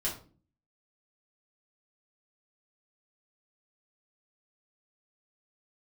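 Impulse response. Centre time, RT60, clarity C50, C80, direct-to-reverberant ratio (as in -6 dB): 26 ms, 0.40 s, 8.0 dB, 14.0 dB, -6.0 dB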